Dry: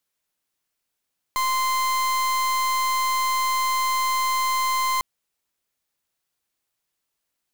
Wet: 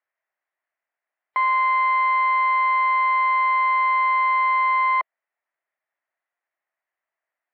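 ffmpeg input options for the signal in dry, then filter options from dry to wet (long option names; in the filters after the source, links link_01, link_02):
-f lavfi -i "aevalsrc='0.075*(2*lt(mod(1040*t,1),0.38)-1)':duration=3.65:sample_rate=44100"
-filter_complex "[0:a]asplit=2[link_01][link_02];[link_02]acrusher=bits=5:dc=4:mix=0:aa=0.000001,volume=-8dB[link_03];[link_01][link_03]amix=inputs=2:normalize=0,highpass=frequency=410:width=0.5412,highpass=frequency=410:width=1.3066,equalizer=frequency=450:width_type=q:width=4:gain=-9,equalizer=frequency=660:width_type=q:width=4:gain=6,equalizer=frequency=1900:width_type=q:width=4:gain=8,lowpass=frequency=2100:width=0.5412,lowpass=frequency=2100:width=1.3066" -ar 12000 -c:a libmp3lame -b:a 64k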